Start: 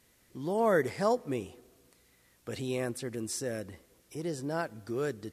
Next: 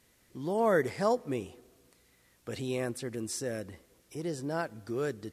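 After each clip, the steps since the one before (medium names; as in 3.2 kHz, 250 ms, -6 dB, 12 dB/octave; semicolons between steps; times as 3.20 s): treble shelf 12 kHz -3 dB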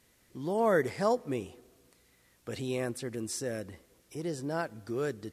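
no audible change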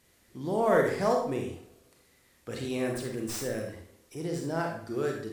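tracing distortion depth 0.049 ms; on a send at -1 dB: reverberation RT60 0.55 s, pre-delay 33 ms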